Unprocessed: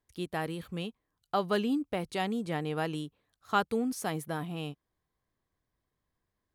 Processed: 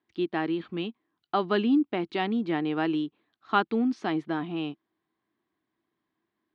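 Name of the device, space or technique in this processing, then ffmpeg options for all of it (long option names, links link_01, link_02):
kitchen radio: -af "highpass=220,equalizer=frequency=230:width_type=q:width=4:gain=4,equalizer=frequency=330:width_type=q:width=4:gain=10,equalizer=frequency=520:width_type=q:width=4:gain=-10,lowpass=frequency=3900:width=0.5412,lowpass=frequency=3900:width=1.3066,volume=4dB"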